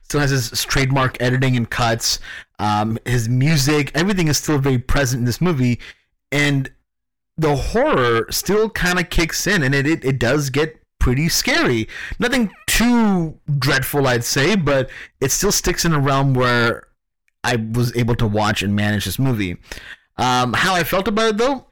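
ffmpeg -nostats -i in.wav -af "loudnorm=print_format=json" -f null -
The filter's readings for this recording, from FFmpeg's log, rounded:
"input_i" : "-18.0",
"input_tp" : "-7.3",
"input_lra" : "1.7",
"input_thresh" : "-28.4",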